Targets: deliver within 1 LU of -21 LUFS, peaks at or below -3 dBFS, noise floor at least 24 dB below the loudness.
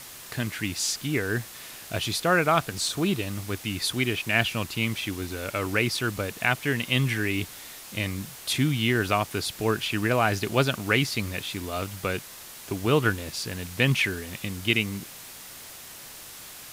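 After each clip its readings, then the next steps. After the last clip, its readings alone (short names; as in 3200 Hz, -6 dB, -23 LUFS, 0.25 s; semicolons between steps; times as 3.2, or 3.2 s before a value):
noise floor -44 dBFS; noise floor target -51 dBFS; loudness -26.5 LUFS; peak -6.5 dBFS; loudness target -21.0 LUFS
-> noise print and reduce 7 dB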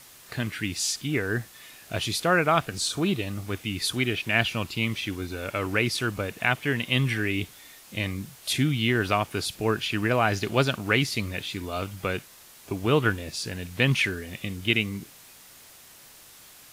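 noise floor -50 dBFS; noise floor target -51 dBFS
-> noise print and reduce 6 dB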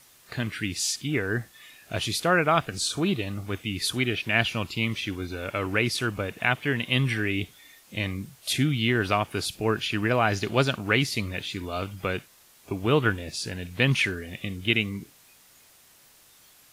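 noise floor -56 dBFS; loudness -26.5 LUFS; peak -7.0 dBFS; loudness target -21.0 LUFS
-> gain +5.5 dB; limiter -3 dBFS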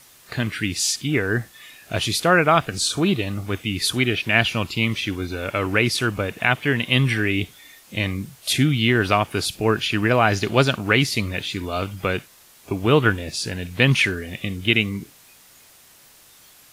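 loudness -21.0 LUFS; peak -3.0 dBFS; noise floor -51 dBFS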